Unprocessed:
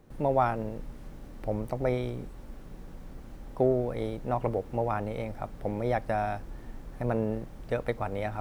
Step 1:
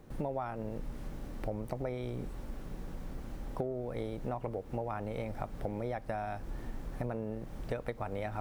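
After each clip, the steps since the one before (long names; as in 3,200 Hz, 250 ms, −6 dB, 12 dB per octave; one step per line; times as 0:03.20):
downward compressor 12 to 1, threshold −35 dBFS, peak gain reduction 16 dB
level +2.5 dB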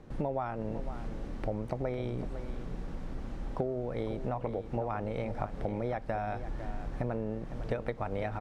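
high-frequency loss of the air 71 metres
on a send: single-tap delay 505 ms −11.5 dB
on the sum: level +3 dB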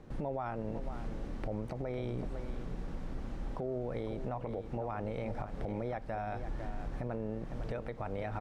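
brickwall limiter −27 dBFS, peak gain reduction 8.5 dB
level −1 dB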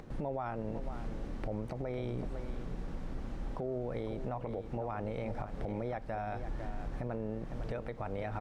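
upward compression, threshold −45 dBFS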